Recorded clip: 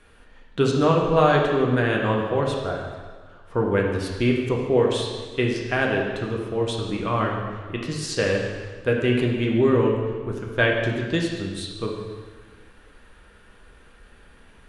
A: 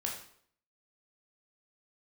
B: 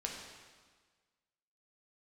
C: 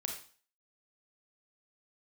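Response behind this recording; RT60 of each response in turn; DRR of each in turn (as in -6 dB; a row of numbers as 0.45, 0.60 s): B; 0.60, 1.5, 0.40 s; -1.5, -1.0, 1.5 dB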